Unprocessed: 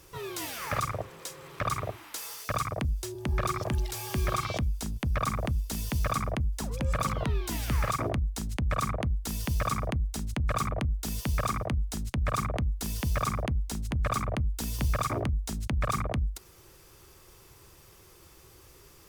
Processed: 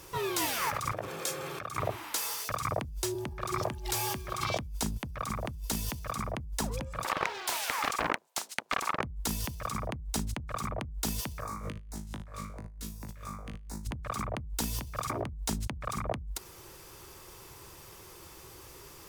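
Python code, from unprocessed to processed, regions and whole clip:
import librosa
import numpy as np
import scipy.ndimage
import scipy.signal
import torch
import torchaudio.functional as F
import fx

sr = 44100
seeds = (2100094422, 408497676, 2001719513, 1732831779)

y = fx.chain(x, sr, fx.over_compress(threshold_db=-39.0, ratio=-1.0),
    fx.notch_comb(f0_hz=980.0),
    fx.transformer_sat(knee_hz=1100.0), at=(0.93, 1.78))
y = fx.chain(y, sr, fx.highpass(hz=540.0, slope=24),
    fx.doppler_dist(depth_ms=0.9), at=(7.04, 9.02))
y = fx.chain(y, sr, fx.filter_lfo_notch(shape='square', hz=2.7, low_hz=800.0, high_hz=3100.0, q=0.92),
    fx.room_flutter(wall_m=3.3, rt60_s=0.41), at=(11.4, 13.85))
y = fx.peak_eq(y, sr, hz=930.0, db=4.0, octaves=0.36)
y = fx.over_compress(y, sr, threshold_db=-34.0, ratio=-1.0)
y = fx.low_shelf(y, sr, hz=110.0, db=-5.5)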